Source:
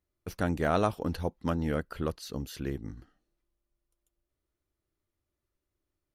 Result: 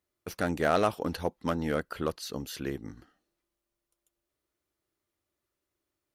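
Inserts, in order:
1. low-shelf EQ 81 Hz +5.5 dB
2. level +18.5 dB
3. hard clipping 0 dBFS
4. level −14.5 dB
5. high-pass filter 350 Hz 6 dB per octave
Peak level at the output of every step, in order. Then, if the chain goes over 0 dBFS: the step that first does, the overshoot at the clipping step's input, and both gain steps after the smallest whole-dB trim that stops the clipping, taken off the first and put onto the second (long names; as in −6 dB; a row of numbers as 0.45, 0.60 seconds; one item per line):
−12.0, +6.5, 0.0, −14.5, −11.5 dBFS
step 2, 6.5 dB
step 2 +11.5 dB, step 4 −7.5 dB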